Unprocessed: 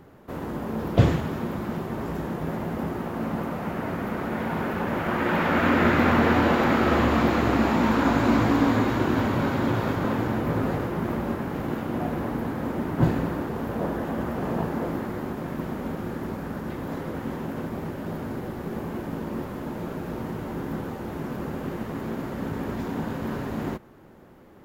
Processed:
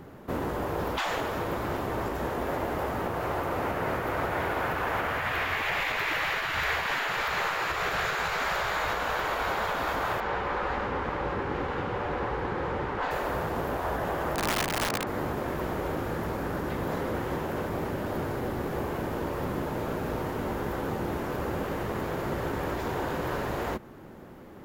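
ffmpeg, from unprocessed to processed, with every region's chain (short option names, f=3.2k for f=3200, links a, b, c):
-filter_complex "[0:a]asettb=1/sr,asplit=3[a][b][c];[a]atrim=end=10.204[d];[b]atrim=start=10.2:end=13.11,asetpts=PTS-STARTPTS,afade=t=in:d=0.004:c=qsin,afade=t=out:st=2.906:d=0.004:c=qsin,lowpass=4.2k,bandreject=f=650:w=5.2[e];[c]atrim=start=13.106[f];[d][e]acrossfade=d=0.004:c1=hsin:c2=qsin[g];[g][f]acrossfade=d=0.004:c1=qsin:c2=hsin,asettb=1/sr,asplit=3[h][i][j];[h]atrim=end=14.354[k];[i]atrim=start=14.35:end=15.07,asetpts=PTS-STARTPTS,afade=t=in:d=0.004:c=qsin,afade=t=out:st=0.716:d=0.004:c=qsin,highpass=160,lowpass=8k,aemphasis=mode=reproduction:type=50fm,aeval=exprs='(mod(14.1*val(0)+1,2)-1)/14.1':c=same[l];[j]atrim=start=15.066[m];[k][l]acrossfade=d=0.004:c1=hsin:c2=qsin[n];[n][m]acrossfade=d=0.004:c1=qsin:c2=hsin,afftfilt=real='re*lt(hypot(re,im),0.158)':imag='im*lt(hypot(re,im),0.158)':win_size=1024:overlap=0.75,alimiter=limit=-23dB:level=0:latency=1:release=156,volume=4dB"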